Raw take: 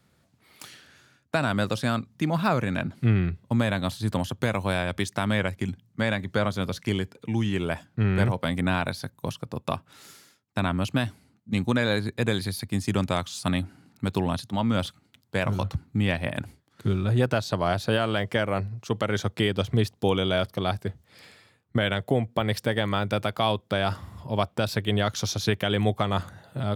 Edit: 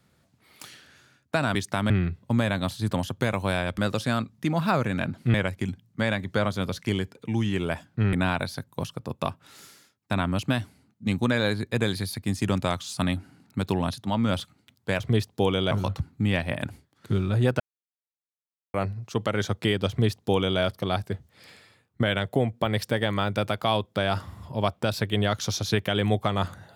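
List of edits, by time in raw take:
0:01.55–0:03.11: swap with 0:04.99–0:05.34
0:08.13–0:08.59: remove
0:17.35–0:18.49: silence
0:19.64–0:20.35: duplicate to 0:15.46

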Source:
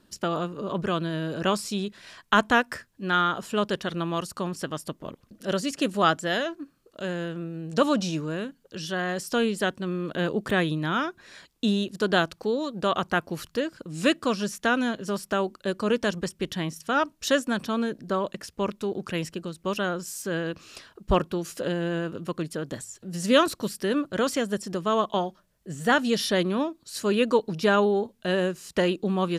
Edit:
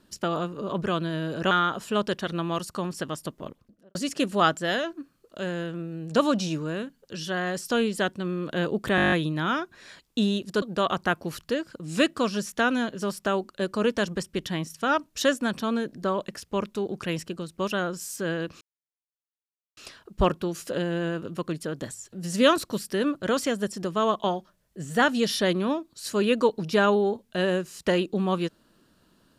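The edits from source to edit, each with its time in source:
0:01.51–0:03.13: remove
0:05.02–0:05.57: fade out and dull
0:10.58: stutter 0.02 s, 9 plays
0:12.08–0:12.68: remove
0:20.67: splice in silence 1.16 s

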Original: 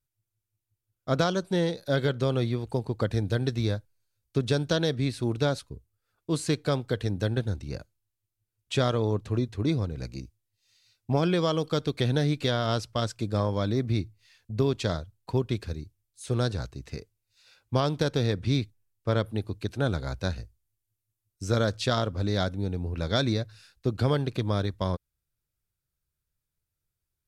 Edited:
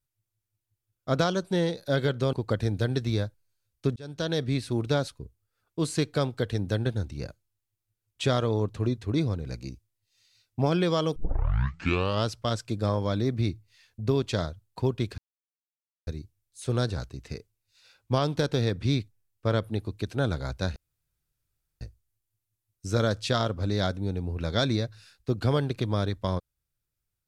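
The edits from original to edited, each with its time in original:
0:02.33–0:02.84: remove
0:04.47–0:04.94: fade in
0:11.67: tape start 1.10 s
0:15.69: splice in silence 0.89 s
0:20.38: splice in room tone 1.05 s

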